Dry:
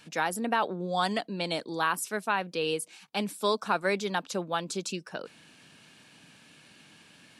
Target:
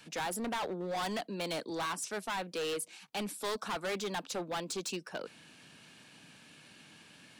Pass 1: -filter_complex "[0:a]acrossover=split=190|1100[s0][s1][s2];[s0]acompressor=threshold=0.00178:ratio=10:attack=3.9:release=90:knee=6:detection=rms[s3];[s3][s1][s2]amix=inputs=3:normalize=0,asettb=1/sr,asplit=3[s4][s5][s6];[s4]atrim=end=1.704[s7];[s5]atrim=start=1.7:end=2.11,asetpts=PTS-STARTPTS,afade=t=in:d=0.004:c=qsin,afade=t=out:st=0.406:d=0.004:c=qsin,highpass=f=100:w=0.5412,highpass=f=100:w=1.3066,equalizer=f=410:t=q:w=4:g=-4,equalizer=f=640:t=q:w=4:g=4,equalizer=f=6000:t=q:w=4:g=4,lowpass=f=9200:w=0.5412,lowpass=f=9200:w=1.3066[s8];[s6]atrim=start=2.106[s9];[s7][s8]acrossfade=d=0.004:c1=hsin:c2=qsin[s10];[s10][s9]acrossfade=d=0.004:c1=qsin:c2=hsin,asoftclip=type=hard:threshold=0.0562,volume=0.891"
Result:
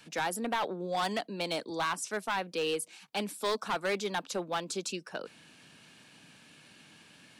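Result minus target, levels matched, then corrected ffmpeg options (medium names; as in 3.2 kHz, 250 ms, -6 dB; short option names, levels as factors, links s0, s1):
hard clipper: distortion -5 dB
-filter_complex "[0:a]acrossover=split=190|1100[s0][s1][s2];[s0]acompressor=threshold=0.00178:ratio=10:attack=3.9:release=90:knee=6:detection=rms[s3];[s3][s1][s2]amix=inputs=3:normalize=0,asettb=1/sr,asplit=3[s4][s5][s6];[s4]atrim=end=1.704[s7];[s5]atrim=start=1.7:end=2.11,asetpts=PTS-STARTPTS,afade=t=in:d=0.004:c=qsin,afade=t=out:st=0.406:d=0.004:c=qsin,highpass=f=100:w=0.5412,highpass=f=100:w=1.3066,equalizer=f=410:t=q:w=4:g=-4,equalizer=f=640:t=q:w=4:g=4,equalizer=f=6000:t=q:w=4:g=4,lowpass=f=9200:w=0.5412,lowpass=f=9200:w=1.3066[s8];[s6]atrim=start=2.106[s9];[s7][s8]acrossfade=d=0.004:c1=hsin:c2=qsin[s10];[s10][s9]acrossfade=d=0.004:c1=qsin:c2=hsin,asoftclip=type=hard:threshold=0.0266,volume=0.891"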